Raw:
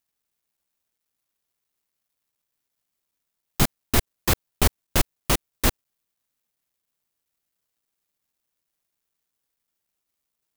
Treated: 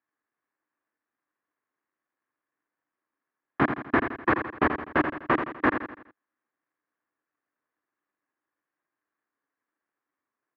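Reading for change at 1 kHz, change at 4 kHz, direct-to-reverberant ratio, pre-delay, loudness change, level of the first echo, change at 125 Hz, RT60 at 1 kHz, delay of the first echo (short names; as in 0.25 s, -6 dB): +5.0 dB, -17.5 dB, none, none, -2.0 dB, -8.0 dB, -9.5 dB, none, 83 ms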